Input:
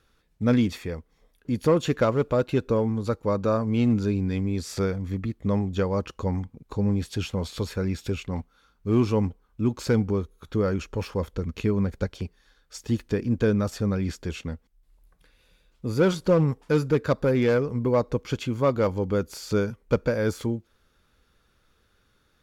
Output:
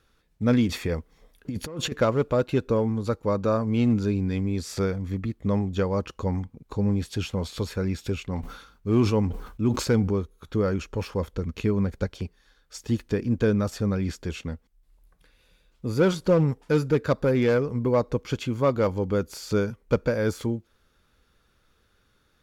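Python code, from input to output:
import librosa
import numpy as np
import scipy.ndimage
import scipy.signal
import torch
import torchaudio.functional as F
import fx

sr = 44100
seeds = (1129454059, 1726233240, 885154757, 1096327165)

y = fx.over_compress(x, sr, threshold_db=-30.0, ratio=-1.0, at=(0.69, 1.92))
y = fx.sustainer(y, sr, db_per_s=79.0, at=(8.38, 10.12))
y = fx.notch(y, sr, hz=1100.0, q=12.0, at=(16.31, 17.06))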